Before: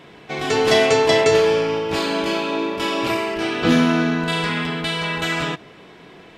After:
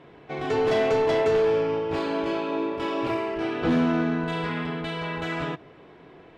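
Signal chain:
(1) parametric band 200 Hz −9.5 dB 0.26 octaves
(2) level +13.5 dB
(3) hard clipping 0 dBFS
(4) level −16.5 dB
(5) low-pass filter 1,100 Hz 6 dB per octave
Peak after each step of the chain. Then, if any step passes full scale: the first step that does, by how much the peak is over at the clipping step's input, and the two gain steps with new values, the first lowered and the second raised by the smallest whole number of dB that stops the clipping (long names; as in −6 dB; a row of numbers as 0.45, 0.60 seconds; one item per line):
−3.5, +10.0, 0.0, −16.5, −16.5 dBFS
step 2, 10.0 dB
step 2 +3.5 dB, step 4 −6.5 dB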